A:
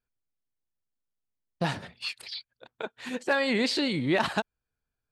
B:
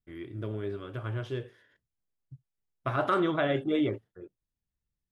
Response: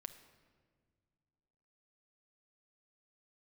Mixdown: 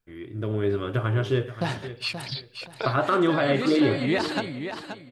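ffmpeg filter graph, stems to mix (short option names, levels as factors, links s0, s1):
-filter_complex "[0:a]alimiter=limit=0.112:level=0:latency=1:release=344,volume=1.41,asplit=3[s0][s1][s2];[s1]volume=0.316[s3];[s2]volume=0.422[s4];[1:a]alimiter=limit=0.0631:level=0:latency=1:release=424,dynaudnorm=f=110:g=9:m=3.16,volume=1.19,asplit=3[s5][s6][s7];[s6]volume=0.211[s8];[s7]apad=whole_len=225540[s9];[s0][s9]sidechaincompress=threshold=0.0178:ratio=8:attack=39:release=141[s10];[2:a]atrim=start_sample=2205[s11];[s3][s11]afir=irnorm=-1:irlink=0[s12];[s4][s8]amix=inputs=2:normalize=0,aecho=0:1:528|1056|1584|2112:1|0.25|0.0625|0.0156[s13];[s10][s5][s12][s13]amix=inputs=4:normalize=0"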